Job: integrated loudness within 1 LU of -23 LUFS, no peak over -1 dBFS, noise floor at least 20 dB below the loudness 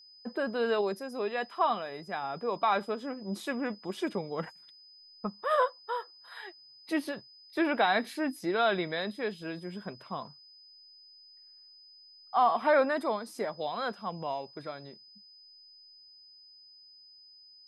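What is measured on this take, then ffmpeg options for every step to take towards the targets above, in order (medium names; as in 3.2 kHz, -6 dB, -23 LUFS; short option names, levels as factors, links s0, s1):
steady tone 5 kHz; tone level -53 dBFS; loudness -32.0 LUFS; peak level -13.5 dBFS; loudness target -23.0 LUFS
-> -af "bandreject=f=5000:w=30"
-af "volume=2.82"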